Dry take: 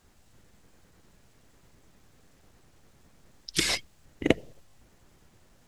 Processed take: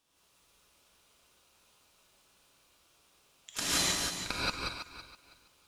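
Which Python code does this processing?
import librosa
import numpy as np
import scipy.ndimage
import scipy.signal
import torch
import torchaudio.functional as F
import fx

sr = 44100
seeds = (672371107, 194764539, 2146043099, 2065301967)

y = fx.reverse_delay_fb(x, sr, ms=163, feedback_pct=50, wet_db=-4)
y = scipy.signal.sosfilt(scipy.signal.butter(2, 750.0, 'highpass', fs=sr, output='sos'), y)
y = y * np.sin(2.0 * np.pi * 1900.0 * np.arange(len(y)) / sr)
y = fx.rev_gated(y, sr, seeds[0], gate_ms=200, shape='rising', drr_db=-7.5)
y = F.gain(torch.from_numpy(y), -6.5).numpy()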